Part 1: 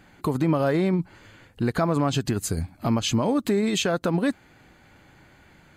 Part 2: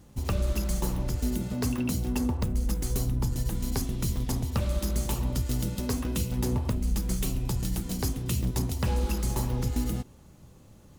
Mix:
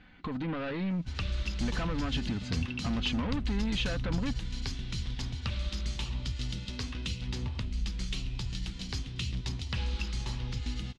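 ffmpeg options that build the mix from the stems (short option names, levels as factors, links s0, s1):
-filter_complex "[0:a]aecho=1:1:4:0.5,asoftclip=type=tanh:threshold=0.0631,acrusher=bits=10:mix=0:aa=0.000001,volume=1.12[s0];[1:a]crystalizer=i=8:c=0,adelay=900,volume=0.596[s1];[s0][s1]amix=inputs=2:normalize=0,lowpass=f=3700:w=0.5412,lowpass=f=3700:w=1.3066,equalizer=f=560:w=0.42:g=-11"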